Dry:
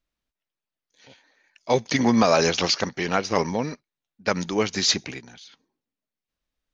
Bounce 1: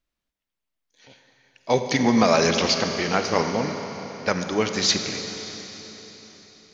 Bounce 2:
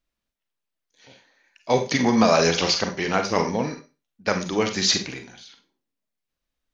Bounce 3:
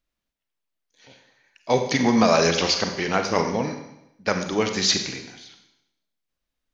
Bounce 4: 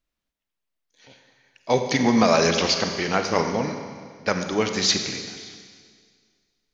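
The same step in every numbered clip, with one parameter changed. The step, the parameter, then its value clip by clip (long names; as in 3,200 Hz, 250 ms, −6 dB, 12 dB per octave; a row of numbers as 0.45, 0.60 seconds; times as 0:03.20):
four-comb reverb, RT60: 4.2, 0.3, 0.84, 1.9 seconds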